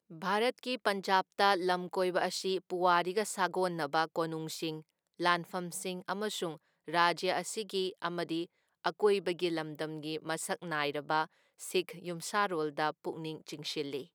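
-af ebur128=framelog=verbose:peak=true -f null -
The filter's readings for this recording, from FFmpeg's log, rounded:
Integrated loudness:
  I:         -33.4 LUFS
  Threshold: -43.5 LUFS
Loudness range:
  LRA:         4.3 LU
  Threshold: -53.6 LUFS
  LRA low:   -35.4 LUFS
  LRA high:  -31.1 LUFS
True peak:
  Peak:      -11.1 dBFS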